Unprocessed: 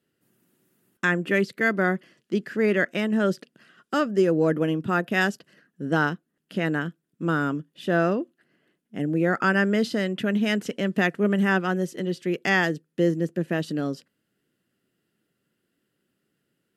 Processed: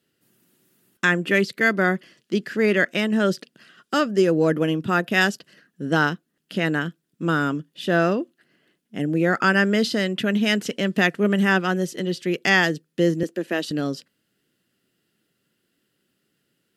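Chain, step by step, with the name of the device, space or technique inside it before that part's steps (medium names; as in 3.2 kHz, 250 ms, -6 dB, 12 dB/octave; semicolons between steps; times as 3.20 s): 13.23–13.71 s: high-pass 240 Hz 24 dB/octave; presence and air boost (peaking EQ 4.2 kHz +6 dB 1.7 oct; treble shelf 10 kHz +5 dB); trim +2 dB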